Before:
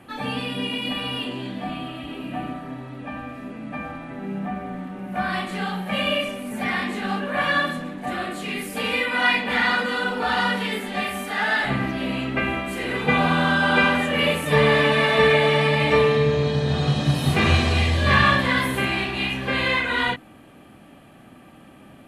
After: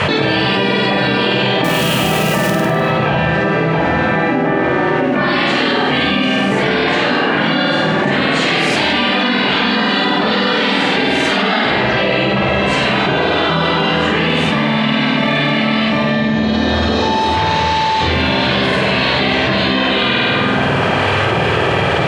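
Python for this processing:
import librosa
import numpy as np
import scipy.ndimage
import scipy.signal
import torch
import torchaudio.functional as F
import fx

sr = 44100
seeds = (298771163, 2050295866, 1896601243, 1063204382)

p1 = scipy.signal.sosfilt(scipy.signal.butter(2, 200.0, 'highpass', fs=sr, output='sos'), x)
p2 = fx.spec_gate(p1, sr, threshold_db=-10, keep='weak')
p3 = scipy.signal.sosfilt(scipy.signal.butter(4, 5900.0, 'lowpass', fs=sr, output='sos'), p2)
p4 = fx.low_shelf(p3, sr, hz=450.0, db=11.5)
p5 = fx.dmg_tone(p4, sr, hz=880.0, level_db=-26.0, at=(17.01, 17.95), fade=0.02)
p6 = 10.0 ** (-12.0 / 20.0) * (np.abs((p5 / 10.0 ** (-12.0 / 20.0) + 3.0) % 4.0 - 2.0) - 1.0)
p7 = p5 + F.gain(torch.from_numpy(p6), -9.5).numpy()
p8 = fx.quant_companded(p7, sr, bits=4, at=(1.64, 2.5))
p9 = p8 + fx.room_flutter(p8, sr, wall_m=8.6, rt60_s=0.77, dry=0)
p10 = fx.rev_plate(p9, sr, seeds[0], rt60_s=2.2, hf_ratio=0.4, predelay_ms=0, drr_db=12.5)
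p11 = fx.env_flatten(p10, sr, amount_pct=100)
y = F.gain(torch.from_numpy(p11), -2.5).numpy()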